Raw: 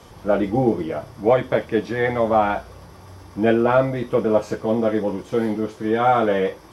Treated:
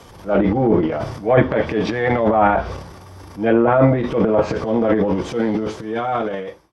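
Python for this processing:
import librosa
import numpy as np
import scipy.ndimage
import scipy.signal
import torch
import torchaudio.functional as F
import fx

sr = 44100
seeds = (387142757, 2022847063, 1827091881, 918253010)

y = fx.fade_out_tail(x, sr, length_s=1.48)
y = fx.transient(y, sr, attack_db=-7, sustain_db=11)
y = fx.env_lowpass_down(y, sr, base_hz=1900.0, full_db=-13.5)
y = y * librosa.db_to_amplitude(2.5)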